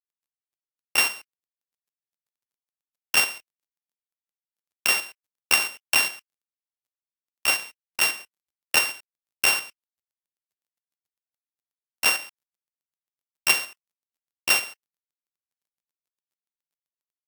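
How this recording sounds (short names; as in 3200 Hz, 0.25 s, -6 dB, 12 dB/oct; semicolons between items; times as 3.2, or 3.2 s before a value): a buzz of ramps at a fixed pitch in blocks of 16 samples; tremolo saw up 7.4 Hz, depth 45%; a quantiser's noise floor 12-bit, dither none; Vorbis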